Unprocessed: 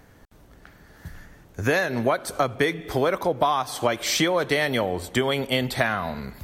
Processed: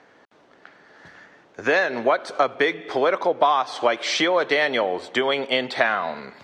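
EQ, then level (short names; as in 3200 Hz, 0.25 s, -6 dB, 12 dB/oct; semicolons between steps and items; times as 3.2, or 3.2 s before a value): BPF 380–5000 Hz; air absorption 55 m; +4.0 dB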